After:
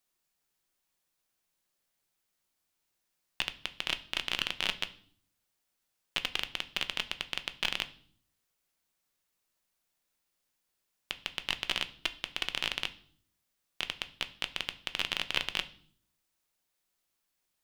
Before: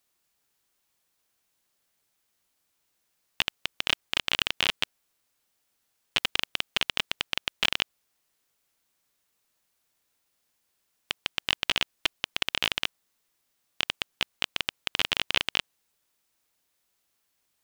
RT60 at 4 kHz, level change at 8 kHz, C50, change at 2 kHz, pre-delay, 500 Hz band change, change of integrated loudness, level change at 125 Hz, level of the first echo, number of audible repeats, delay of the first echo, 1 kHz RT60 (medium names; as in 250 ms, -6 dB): 0.55 s, -5.5 dB, 17.5 dB, -5.5 dB, 3 ms, -5.5 dB, -5.5 dB, -5.0 dB, no echo, no echo, no echo, 0.50 s